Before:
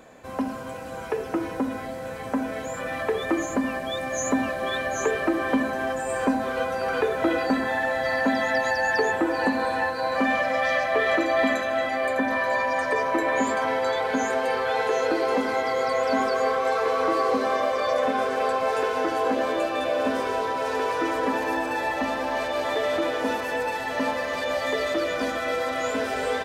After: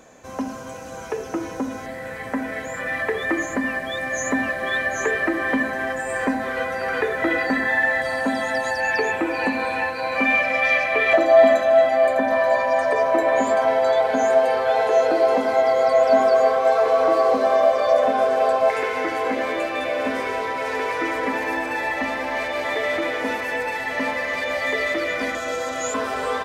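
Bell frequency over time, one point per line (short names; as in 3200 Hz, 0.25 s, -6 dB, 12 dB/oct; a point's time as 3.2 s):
bell +13 dB 0.35 oct
6200 Hz
from 1.86 s 1900 Hz
from 8.02 s 8700 Hz
from 8.8 s 2400 Hz
from 11.13 s 670 Hz
from 18.7 s 2100 Hz
from 25.35 s 6800 Hz
from 25.94 s 1100 Hz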